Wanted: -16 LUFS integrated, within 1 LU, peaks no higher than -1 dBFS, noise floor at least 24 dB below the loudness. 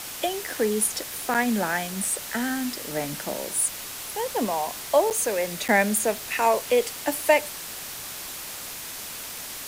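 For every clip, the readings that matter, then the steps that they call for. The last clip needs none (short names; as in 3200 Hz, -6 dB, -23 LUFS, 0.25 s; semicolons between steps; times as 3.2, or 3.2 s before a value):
dropouts 3; longest dropout 7.6 ms; noise floor -37 dBFS; noise floor target -50 dBFS; loudness -25.5 LUFS; peak -7.0 dBFS; loudness target -16.0 LUFS
-> interpolate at 1.34/5.1/5.68, 7.6 ms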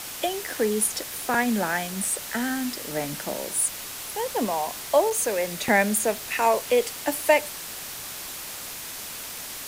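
dropouts 0; noise floor -37 dBFS; noise floor target -50 dBFS
-> noise print and reduce 13 dB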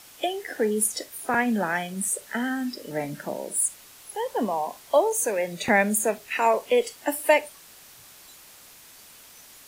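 noise floor -50 dBFS; loudness -25.5 LUFS; peak -7.5 dBFS; loudness target -16.0 LUFS
-> gain +9.5 dB; limiter -1 dBFS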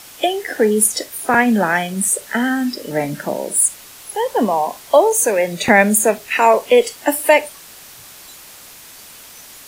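loudness -16.0 LUFS; peak -1.0 dBFS; noise floor -40 dBFS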